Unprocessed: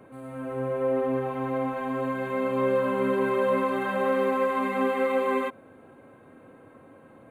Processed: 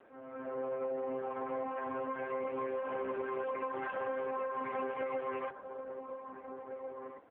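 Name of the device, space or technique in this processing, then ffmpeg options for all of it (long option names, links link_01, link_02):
voicemail: -filter_complex "[0:a]asettb=1/sr,asplit=3[link_01][link_02][link_03];[link_01]atrim=end=1.824[link_04];[link_02]atrim=start=1.82:end=2.85,asetpts=PTS-STARTPTS,afade=type=in:duration=0.004:curve=qsin,afade=type=out:start_time=1.026:duration=0.004:curve=qsin,highpass=42[link_05];[link_03]atrim=start=2.846[link_06];[link_04][link_05]acrossfade=duration=0.004:curve1=hsin:curve2=qsin[link_07];[link_07][link_06]acrossfade=duration=0.004:curve1=qsin:curve2=hsin,highpass=380,lowpass=3000,asplit=2[link_08][link_09];[link_09]adelay=1691,volume=-12dB,highshelf=frequency=4000:gain=-38[link_10];[link_08][link_10]amix=inputs=2:normalize=0,acompressor=threshold=-29dB:ratio=10,volume=-3dB" -ar 8000 -c:a libopencore_amrnb -b:a 5150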